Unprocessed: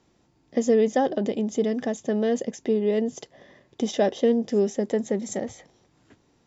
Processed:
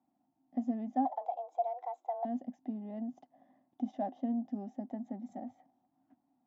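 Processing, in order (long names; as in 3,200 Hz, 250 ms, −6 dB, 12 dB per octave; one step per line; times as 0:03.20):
0:01.05–0:02.25: frequency shifter +250 Hz
pair of resonant band-passes 440 Hz, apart 1.5 octaves
level −4 dB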